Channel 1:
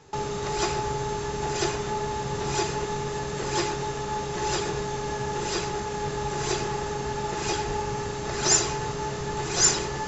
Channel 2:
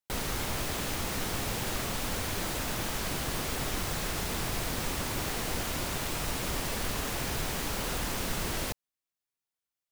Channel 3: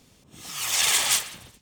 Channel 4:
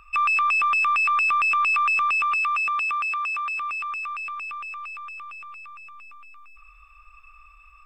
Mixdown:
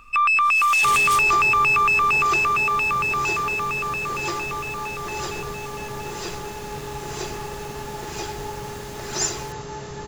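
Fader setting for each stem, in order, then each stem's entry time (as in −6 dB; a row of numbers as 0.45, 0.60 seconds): −3.5, −8.5, −7.5, +3.0 decibels; 0.70, 0.80, 0.00, 0.00 seconds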